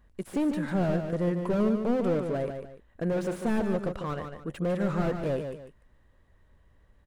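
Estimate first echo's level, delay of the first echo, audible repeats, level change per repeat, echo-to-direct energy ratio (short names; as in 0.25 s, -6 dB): -7.0 dB, 0.148 s, 2, -10.0 dB, -6.5 dB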